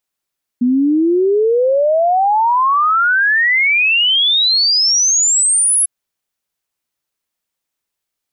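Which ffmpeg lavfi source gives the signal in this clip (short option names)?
-f lavfi -i "aevalsrc='0.316*clip(min(t,5.25-t)/0.01,0,1)*sin(2*PI*240*5.25/log(11000/240)*(exp(log(11000/240)*t/5.25)-1))':d=5.25:s=44100"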